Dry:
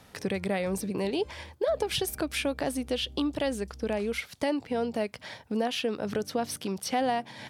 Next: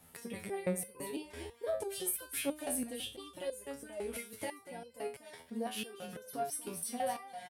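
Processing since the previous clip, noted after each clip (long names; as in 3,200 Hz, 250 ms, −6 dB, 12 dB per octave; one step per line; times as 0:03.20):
high shelf with overshoot 7,400 Hz +11 dB, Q 1.5
single-tap delay 239 ms −10.5 dB
step-sequenced resonator 6 Hz 83–510 Hz
level +1 dB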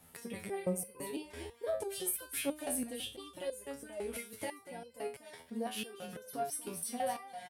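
healed spectral selection 0:00.63–0:00.89, 1,300–4,600 Hz both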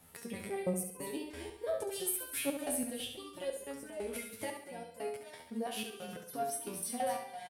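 repeating echo 69 ms, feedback 42%, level −7.5 dB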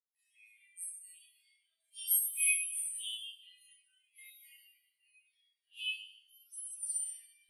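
four-pole ladder high-pass 2,100 Hz, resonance 30%
four-comb reverb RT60 1.8 s, combs from 25 ms, DRR −7.5 dB
every bin expanded away from the loudest bin 2.5 to 1
level +6 dB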